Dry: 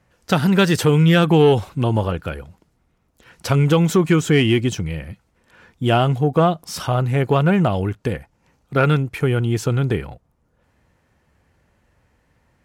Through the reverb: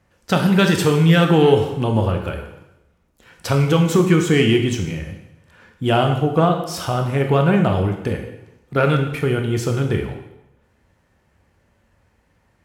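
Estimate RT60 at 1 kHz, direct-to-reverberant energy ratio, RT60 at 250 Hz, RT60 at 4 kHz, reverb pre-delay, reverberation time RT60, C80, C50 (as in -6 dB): 0.90 s, 3.5 dB, 0.90 s, 0.85 s, 7 ms, 0.90 s, 9.0 dB, 7.0 dB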